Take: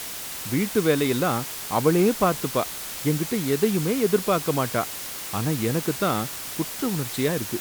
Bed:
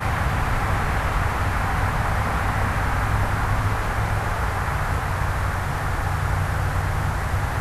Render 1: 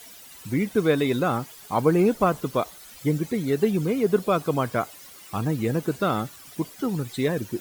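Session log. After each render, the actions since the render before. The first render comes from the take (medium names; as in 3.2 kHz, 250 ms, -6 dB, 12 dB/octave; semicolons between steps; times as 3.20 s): noise reduction 15 dB, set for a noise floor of -34 dBFS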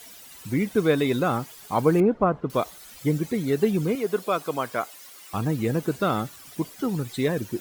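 2.00–2.50 s: low-pass 1.4 kHz; 3.95–5.34 s: high-pass 520 Hz 6 dB/octave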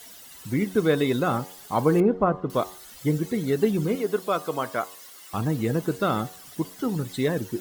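band-stop 2.4 kHz, Q 11; de-hum 92.69 Hz, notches 13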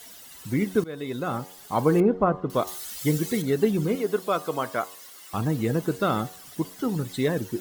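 0.84–2.07 s: fade in equal-power, from -20.5 dB; 2.67–3.42 s: treble shelf 2.2 kHz +9.5 dB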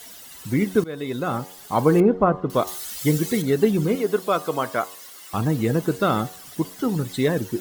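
trim +3.5 dB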